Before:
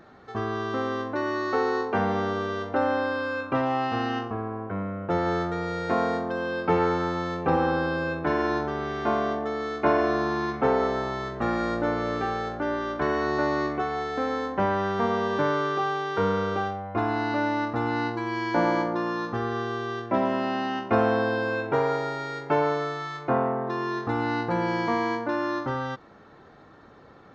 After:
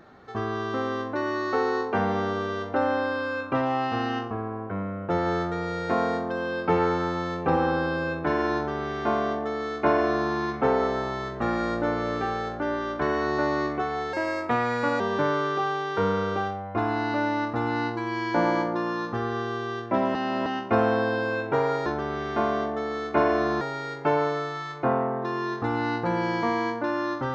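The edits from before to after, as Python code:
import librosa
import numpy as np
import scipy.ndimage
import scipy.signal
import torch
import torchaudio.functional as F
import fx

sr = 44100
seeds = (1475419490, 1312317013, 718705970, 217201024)

y = fx.edit(x, sr, fx.duplicate(start_s=8.55, length_s=1.75, to_s=22.06),
    fx.speed_span(start_s=14.13, length_s=1.07, speed=1.23),
    fx.reverse_span(start_s=20.35, length_s=0.31), tone=tone)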